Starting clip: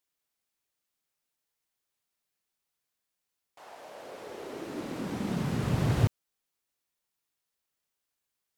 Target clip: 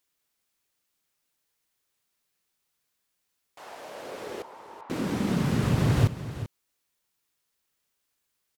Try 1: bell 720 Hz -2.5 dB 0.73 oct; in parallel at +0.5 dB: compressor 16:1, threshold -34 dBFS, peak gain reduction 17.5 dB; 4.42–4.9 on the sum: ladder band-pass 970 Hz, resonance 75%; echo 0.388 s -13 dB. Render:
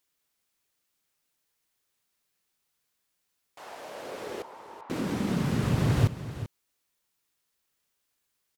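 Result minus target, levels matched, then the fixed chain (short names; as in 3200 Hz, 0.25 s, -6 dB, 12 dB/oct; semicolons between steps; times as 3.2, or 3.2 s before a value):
compressor: peak gain reduction +5.5 dB
bell 720 Hz -2.5 dB 0.73 oct; in parallel at +0.5 dB: compressor 16:1, threshold -28 dBFS, peak gain reduction 12 dB; 4.42–4.9 on the sum: ladder band-pass 970 Hz, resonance 75%; echo 0.388 s -13 dB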